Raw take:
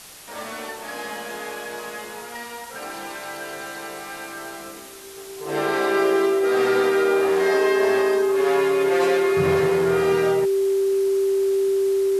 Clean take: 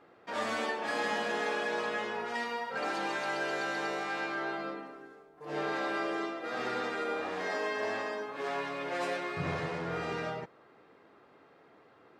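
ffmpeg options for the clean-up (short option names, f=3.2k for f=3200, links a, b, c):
-af "bandreject=f=390:w=30,afwtdn=0.0089,asetnsamples=n=441:p=0,asendcmd='5.17 volume volume -10dB',volume=0dB"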